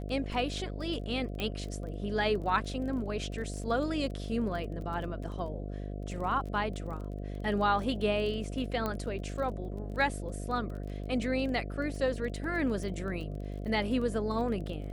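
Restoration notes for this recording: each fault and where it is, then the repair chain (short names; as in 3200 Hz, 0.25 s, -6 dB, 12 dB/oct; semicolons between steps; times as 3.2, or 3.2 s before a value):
buzz 50 Hz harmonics 14 -38 dBFS
crackle 20/s -39 dBFS
1.4 pop -20 dBFS
8.86 pop -19 dBFS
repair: de-click; de-hum 50 Hz, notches 14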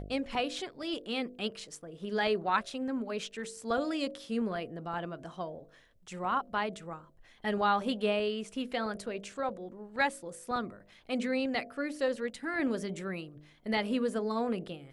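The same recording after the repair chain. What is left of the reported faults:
none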